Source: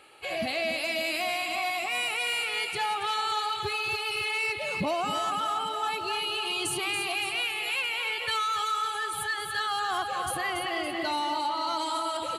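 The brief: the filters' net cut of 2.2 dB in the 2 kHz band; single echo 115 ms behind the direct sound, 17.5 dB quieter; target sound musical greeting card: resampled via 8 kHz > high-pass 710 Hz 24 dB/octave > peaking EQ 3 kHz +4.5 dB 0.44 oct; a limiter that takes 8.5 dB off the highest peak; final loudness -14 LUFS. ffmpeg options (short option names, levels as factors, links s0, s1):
-af "equalizer=f=2000:t=o:g=-5,alimiter=level_in=1.58:limit=0.0631:level=0:latency=1,volume=0.631,aecho=1:1:115:0.133,aresample=8000,aresample=44100,highpass=f=710:w=0.5412,highpass=f=710:w=1.3066,equalizer=f=3000:t=o:w=0.44:g=4.5,volume=10"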